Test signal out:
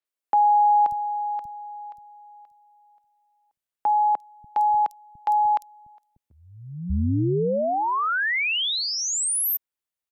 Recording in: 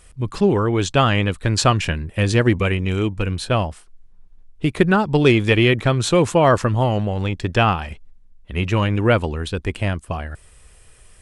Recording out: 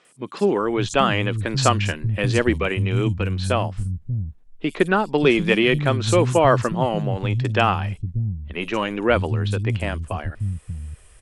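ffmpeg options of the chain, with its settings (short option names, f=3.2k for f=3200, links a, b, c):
-filter_complex "[0:a]acrossover=split=190|5200[a][b][c];[c]adelay=50[d];[a]adelay=590[e];[e][b][d]amix=inputs=3:normalize=0,volume=-1dB"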